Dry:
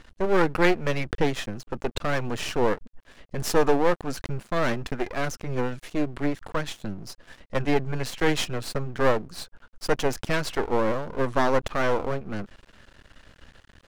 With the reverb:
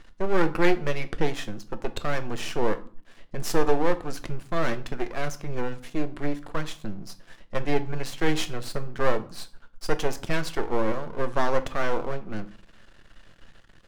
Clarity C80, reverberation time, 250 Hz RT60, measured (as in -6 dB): 21.5 dB, 0.45 s, 0.60 s